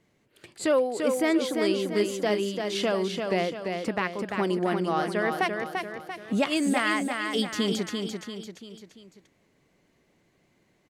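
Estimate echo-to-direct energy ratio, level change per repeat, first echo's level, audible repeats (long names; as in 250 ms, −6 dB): −4.0 dB, −6.5 dB, −5.0 dB, 4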